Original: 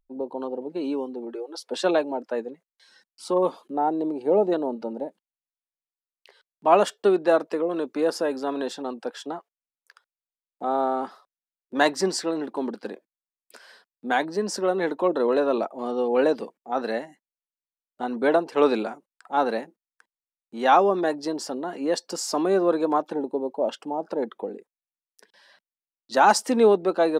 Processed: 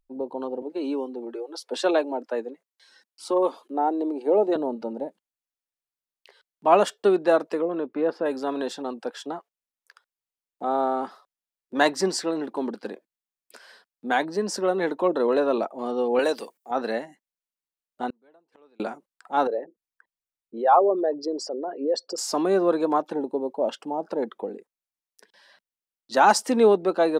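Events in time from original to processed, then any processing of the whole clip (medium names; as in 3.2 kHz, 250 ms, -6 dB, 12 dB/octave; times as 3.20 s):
0.62–4.56 s: steep high-pass 230 Hz
7.65–8.26 s: distance through air 390 m
16.19–16.71 s: RIAA curve recording
18.10–18.80 s: inverted gate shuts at -28 dBFS, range -38 dB
19.47–22.18 s: resonances exaggerated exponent 2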